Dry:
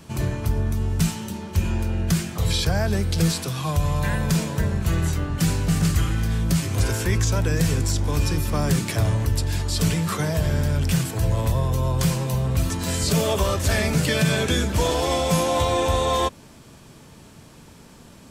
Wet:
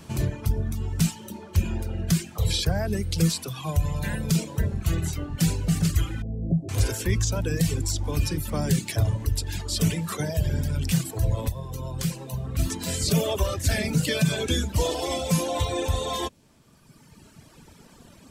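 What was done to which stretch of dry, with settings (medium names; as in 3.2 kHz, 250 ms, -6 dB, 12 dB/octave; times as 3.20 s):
6.22–6.69 s: elliptic low-pass 740 Hz
11.49–12.59 s: gain -4 dB
whole clip: reverb removal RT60 1.9 s; dynamic bell 1.2 kHz, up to -6 dB, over -43 dBFS, Q 0.87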